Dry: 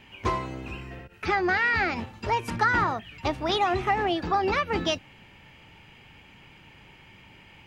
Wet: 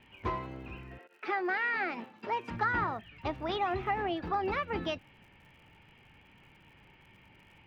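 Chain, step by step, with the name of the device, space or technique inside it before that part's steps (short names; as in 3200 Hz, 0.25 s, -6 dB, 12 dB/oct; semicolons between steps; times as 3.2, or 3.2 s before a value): lo-fi chain (LPF 3100 Hz 12 dB/oct; wow and flutter 19 cents; crackle 90/s -49 dBFS); 0.97–2.49 HPF 350 Hz -> 160 Hz 24 dB/oct; gain -7 dB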